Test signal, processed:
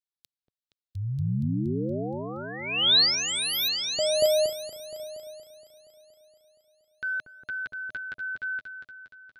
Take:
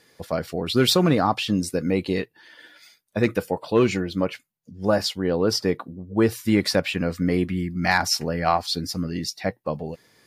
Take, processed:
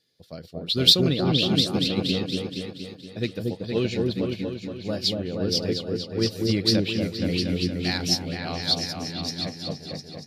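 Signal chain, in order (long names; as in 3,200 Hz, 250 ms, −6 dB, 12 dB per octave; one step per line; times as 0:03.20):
octave-band graphic EQ 125/1,000/2,000/4,000/8,000 Hz +4/−11/−5/+11/−3 dB
on a send: echo whose low-pass opens from repeat to repeat 235 ms, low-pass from 750 Hz, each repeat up 2 octaves, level 0 dB
on the sum: dynamic equaliser 2,800 Hz, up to +4 dB, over −33 dBFS, Q 1.1
expander for the loud parts 1.5 to 1, over −35 dBFS
level −3 dB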